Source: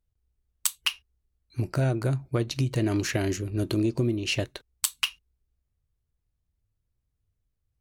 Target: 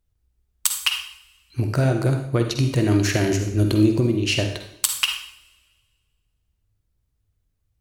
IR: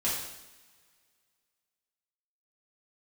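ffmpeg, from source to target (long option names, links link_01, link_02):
-filter_complex "[0:a]asplit=2[link_01][link_02];[1:a]atrim=start_sample=2205,asetrate=61740,aresample=44100,adelay=47[link_03];[link_02][link_03]afir=irnorm=-1:irlink=0,volume=-9.5dB[link_04];[link_01][link_04]amix=inputs=2:normalize=0,volume=5dB"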